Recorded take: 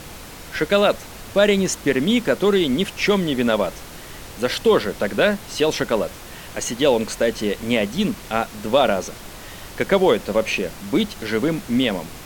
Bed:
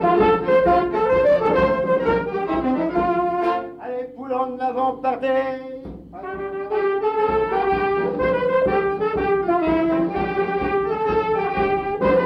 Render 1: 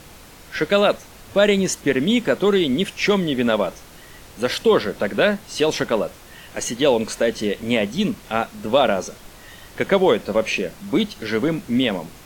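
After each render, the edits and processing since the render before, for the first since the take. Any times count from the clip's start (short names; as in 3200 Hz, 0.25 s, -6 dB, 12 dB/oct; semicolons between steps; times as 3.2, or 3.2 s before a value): noise print and reduce 6 dB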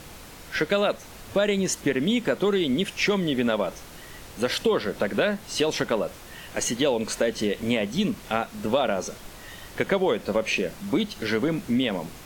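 compressor 3:1, threshold -21 dBFS, peak gain reduction 8 dB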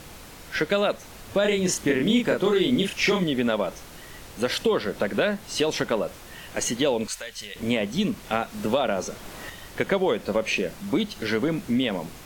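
1.41–3.24 doubler 33 ms -3 dB; 7.07–7.56 passive tone stack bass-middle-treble 10-0-10; 8.32–9.5 three-band squash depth 40%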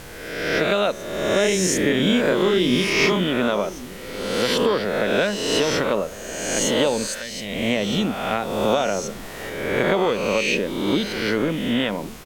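spectral swells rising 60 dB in 1.30 s; outdoor echo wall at 190 m, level -17 dB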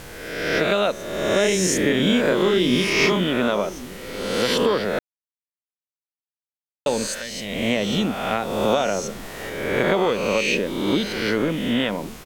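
4.99–6.86 mute; 9.54–10.69 sample gate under -44.5 dBFS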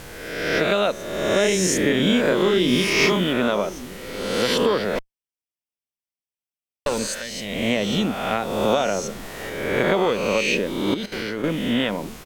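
2.68–3.33 high shelf 7600 Hz +4.5 dB; 4.95–6.99 minimum comb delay 0.36 ms; 10.94–11.44 level quantiser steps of 14 dB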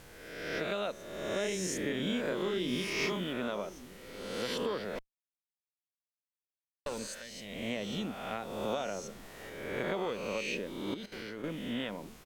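gain -14.5 dB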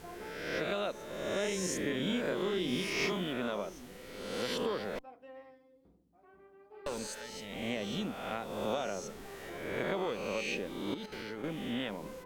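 add bed -31 dB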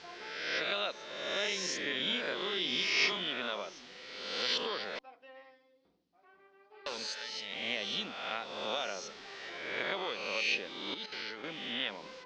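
steep low-pass 5100 Hz 36 dB/oct; tilt +4.5 dB/oct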